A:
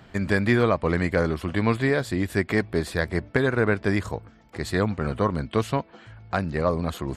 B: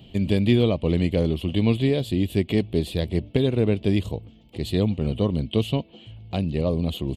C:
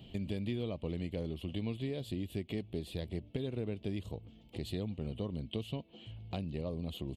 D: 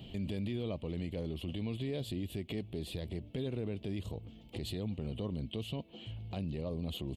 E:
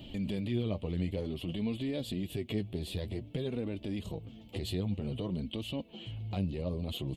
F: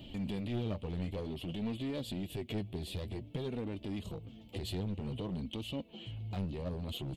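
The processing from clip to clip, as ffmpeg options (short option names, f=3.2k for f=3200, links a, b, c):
-af "firequalizer=gain_entry='entry(220,0);entry(600,-6);entry(1500,-26);entry(2900,7);entry(5400,-12);entry(12000,-2)':delay=0.05:min_phase=1,volume=3.5dB"
-af "acompressor=threshold=-32dB:ratio=3,volume=-5.5dB"
-af "alimiter=level_in=9dB:limit=-24dB:level=0:latency=1:release=21,volume=-9dB,volume=4dB"
-af "flanger=delay=3.3:depth=7.6:regen=29:speed=0.53:shape=sinusoidal,volume=6.5dB"
-af "aeval=exprs='clip(val(0),-1,0.0251)':c=same,volume=-2dB"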